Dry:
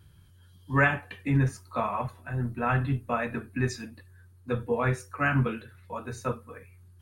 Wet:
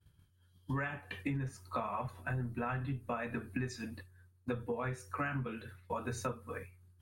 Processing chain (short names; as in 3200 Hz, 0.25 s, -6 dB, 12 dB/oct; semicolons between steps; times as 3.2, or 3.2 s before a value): expander -45 dBFS; compressor 16:1, threshold -37 dBFS, peak gain reduction 20.5 dB; gain +3.5 dB